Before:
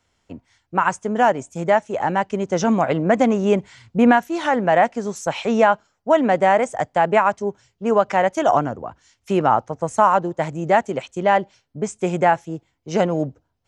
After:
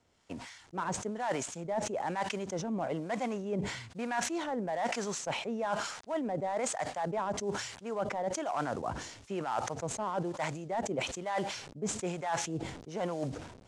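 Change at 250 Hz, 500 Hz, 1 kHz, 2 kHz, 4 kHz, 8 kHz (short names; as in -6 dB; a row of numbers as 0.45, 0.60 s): -15.5, -16.0, -16.5, -15.0, -6.0, -1.5 dB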